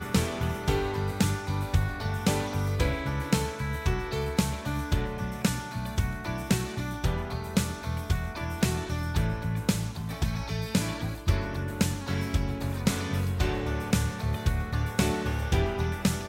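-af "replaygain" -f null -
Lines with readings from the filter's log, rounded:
track_gain = +10.3 dB
track_peak = 0.202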